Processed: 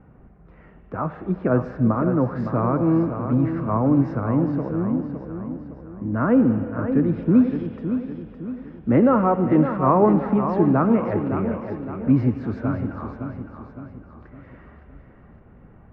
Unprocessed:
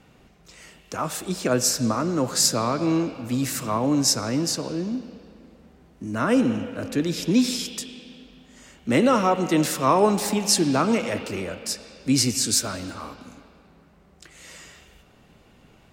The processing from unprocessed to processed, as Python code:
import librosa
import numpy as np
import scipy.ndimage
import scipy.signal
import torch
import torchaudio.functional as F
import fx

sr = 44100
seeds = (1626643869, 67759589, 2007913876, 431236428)

p1 = scipy.signal.sosfilt(scipy.signal.butter(4, 1600.0, 'lowpass', fs=sr, output='sos'), x)
p2 = fx.low_shelf(p1, sr, hz=200.0, db=9.5)
y = p2 + fx.echo_feedback(p2, sr, ms=562, feedback_pct=45, wet_db=-8.5, dry=0)